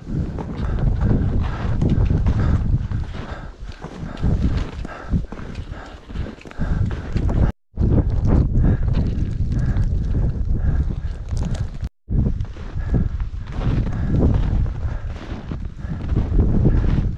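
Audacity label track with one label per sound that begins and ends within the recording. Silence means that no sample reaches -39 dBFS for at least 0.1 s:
7.760000	11.870000	sound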